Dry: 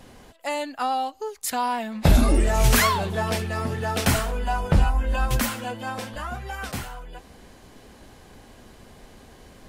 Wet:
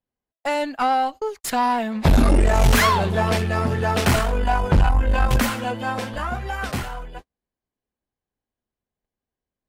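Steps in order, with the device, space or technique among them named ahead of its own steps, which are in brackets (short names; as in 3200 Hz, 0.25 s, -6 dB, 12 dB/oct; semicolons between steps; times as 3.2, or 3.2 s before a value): tube preamp driven hard (tube stage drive 18 dB, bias 0.5; high shelf 4900 Hz -8 dB); gate -41 dBFS, range -47 dB; gain +8 dB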